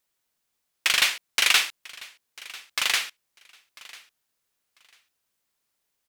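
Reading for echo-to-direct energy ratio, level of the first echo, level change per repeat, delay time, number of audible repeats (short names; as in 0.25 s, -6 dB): -21.0 dB, -21.0 dB, -14.0 dB, 0.995 s, 2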